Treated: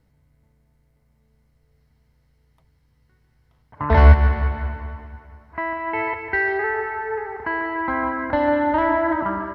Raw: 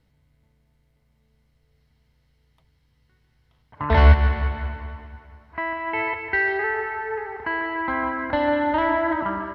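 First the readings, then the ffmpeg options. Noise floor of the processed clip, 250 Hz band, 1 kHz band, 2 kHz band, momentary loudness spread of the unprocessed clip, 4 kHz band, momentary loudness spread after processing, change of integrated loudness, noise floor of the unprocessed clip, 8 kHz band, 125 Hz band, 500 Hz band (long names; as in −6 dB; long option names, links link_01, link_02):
−63 dBFS, +2.5 dB, +2.0 dB, 0.0 dB, 15 LU, −4.5 dB, 15 LU, +2.0 dB, −66 dBFS, can't be measured, +2.5 dB, +2.5 dB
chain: -af "equalizer=frequency=3300:width_type=o:width=1.1:gain=-8,volume=2.5dB"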